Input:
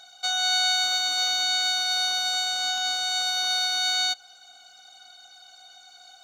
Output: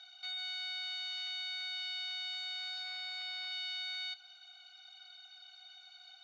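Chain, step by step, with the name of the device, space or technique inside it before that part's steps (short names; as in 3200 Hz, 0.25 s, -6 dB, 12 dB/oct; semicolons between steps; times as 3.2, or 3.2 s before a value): 2.83–3.52 tilt -1.5 dB/oct; scooped metal amplifier (tube stage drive 35 dB, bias 0.35; speaker cabinet 100–4100 Hz, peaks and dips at 130 Hz -9 dB, 360 Hz +9 dB, 540 Hz -5 dB, 2500 Hz +5 dB; passive tone stack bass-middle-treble 10-0-10)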